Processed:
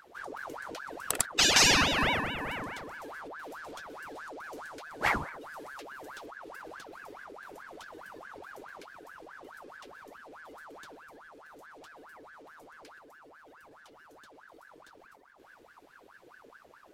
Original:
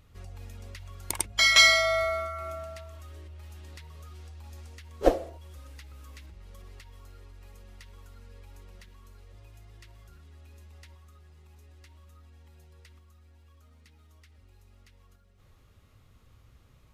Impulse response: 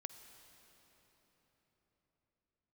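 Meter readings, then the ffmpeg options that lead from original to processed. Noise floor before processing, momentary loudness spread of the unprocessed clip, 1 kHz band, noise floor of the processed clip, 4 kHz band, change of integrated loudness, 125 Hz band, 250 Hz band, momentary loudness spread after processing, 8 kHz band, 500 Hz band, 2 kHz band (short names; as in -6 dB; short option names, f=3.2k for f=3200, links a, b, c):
-59 dBFS, 22 LU, +1.5 dB, -58 dBFS, -2.5 dB, -6.0 dB, -2.0 dB, +2.0 dB, 25 LU, +1.5 dB, -7.0 dB, -4.0 dB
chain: -af "afftfilt=real='re*lt(hypot(re,im),0.562)':imag='im*lt(hypot(re,im),0.562)':win_size=1024:overlap=0.75,aeval=exprs='val(0)*sin(2*PI*1000*n/s+1000*0.65/4.7*sin(2*PI*4.7*n/s))':c=same,volume=4dB"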